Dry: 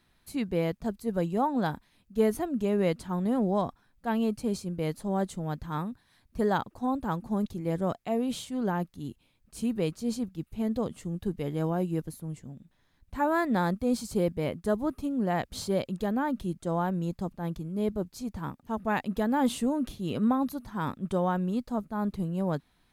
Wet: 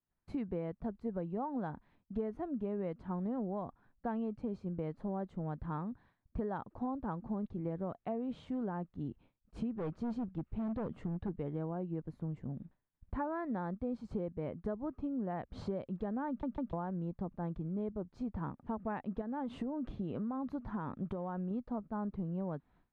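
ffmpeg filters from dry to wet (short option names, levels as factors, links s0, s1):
-filter_complex "[0:a]asplit=3[s0][s1][s2];[s0]afade=t=out:st=9.71:d=0.02[s3];[s1]volume=33.5,asoftclip=hard,volume=0.0299,afade=t=in:st=9.71:d=0.02,afade=t=out:st=11.28:d=0.02[s4];[s2]afade=t=in:st=11.28:d=0.02[s5];[s3][s4][s5]amix=inputs=3:normalize=0,asettb=1/sr,asplit=3[s6][s7][s8];[s6]atrim=end=19.214[s9];[s7]atrim=start=19.21:end=21.51,asetpts=PTS-STARTPTS,afade=t=in:d=0.004:c=qsin,afade=t=out:st=2.296:d=0.004:c=qsin,acompressor=threshold=0.0316:ratio=6:attack=3.2:release=140:knee=1:detection=peak[s10];[s8]atrim=start=21.506[s11];[s9][s10]acrossfade=d=0.004:c1=hsin:c2=qsin[s12];[s12][s11]acrossfade=d=0.004:c1=qsin:c2=hsin,asplit=4[s13][s14][s15][s16];[s13]atrim=end=16.432[s17];[s14]atrim=start=16.278:end=16.432[s18];[s15]atrim=start=16.278:end=16.432[s19];[s16]atrim=start=16.728[s20];[s17][s18]acrossfade=d=0.004:c1=hsin:c2=hsin[s21];[s21][s19]acrossfade=d=0.004:c1=hsin:c2=hsin[s22];[s22][s20]acrossfade=d=0.004:c1=hsin:c2=hsin,lowpass=1400,agate=range=0.0224:threshold=0.00224:ratio=3:detection=peak,acompressor=threshold=0.00891:ratio=6,volume=1.78"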